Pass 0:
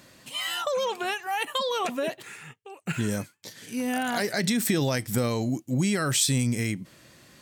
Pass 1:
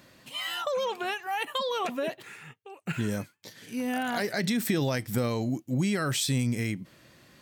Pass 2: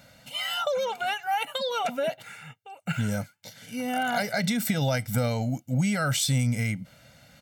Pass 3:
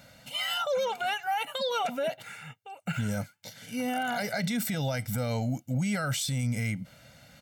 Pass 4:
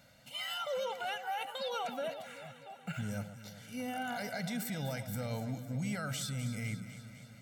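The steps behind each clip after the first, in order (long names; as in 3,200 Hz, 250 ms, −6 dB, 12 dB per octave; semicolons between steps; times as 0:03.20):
parametric band 8,200 Hz −6 dB 1.2 octaves; level −2 dB
comb filter 1.4 ms, depth 93%
brickwall limiter −22 dBFS, peak gain reduction 8 dB
delay that swaps between a low-pass and a high-pass 126 ms, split 1,200 Hz, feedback 78%, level −10 dB; level −8 dB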